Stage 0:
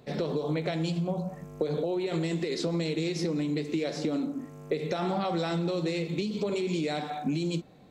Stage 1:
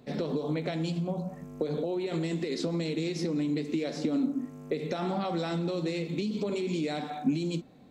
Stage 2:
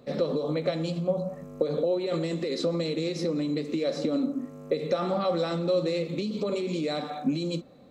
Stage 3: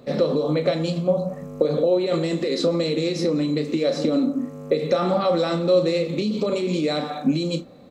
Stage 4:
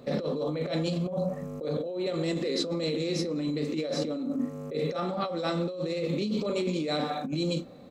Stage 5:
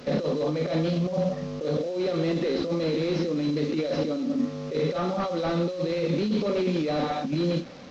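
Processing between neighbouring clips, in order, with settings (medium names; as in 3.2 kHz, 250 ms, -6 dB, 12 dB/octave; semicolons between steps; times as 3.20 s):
peaking EQ 250 Hz +9 dB 0.36 oct; trim -2.5 dB
small resonant body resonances 540/1200/4000 Hz, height 12 dB, ringing for 40 ms
doubling 33 ms -10.5 dB; trim +6 dB
compressor with a negative ratio -25 dBFS, ratio -1; trim -5 dB
one-bit delta coder 32 kbps, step -44 dBFS; trim +4 dB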